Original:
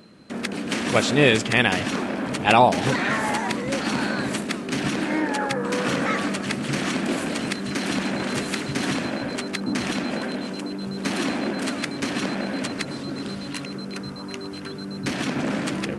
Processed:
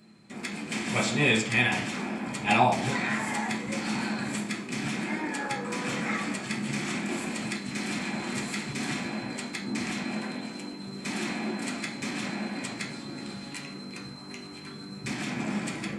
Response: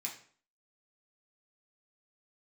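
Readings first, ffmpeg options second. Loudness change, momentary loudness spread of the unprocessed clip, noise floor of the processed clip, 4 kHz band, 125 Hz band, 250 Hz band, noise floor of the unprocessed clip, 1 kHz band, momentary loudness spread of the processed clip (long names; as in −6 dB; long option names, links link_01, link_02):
−5.5 dB, 13 LU, −42 dBFS, −6.5 dB, −5.5 dB, −6.0 dB, −34 dBFS, −6.5 dB, 14 LU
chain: -filter_complex "[1:a]atrim=start_sample=2205[link_01];[0:a][link_01]afir=irnorm=-1:irlink=0,volume=-5dB"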